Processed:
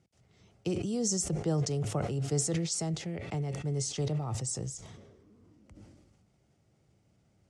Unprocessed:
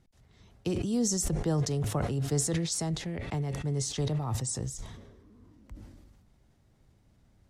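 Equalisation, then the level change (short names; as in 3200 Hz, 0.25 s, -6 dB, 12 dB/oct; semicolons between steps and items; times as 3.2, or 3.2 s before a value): speaker cabinet 110–9300 Hz, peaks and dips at 250 Hz -6 dB, 1000 Hz -7 dB, 3800 Hz -6 dB; bell 1700 Hz -6.5 dB 0.34 oct; 0.0 dB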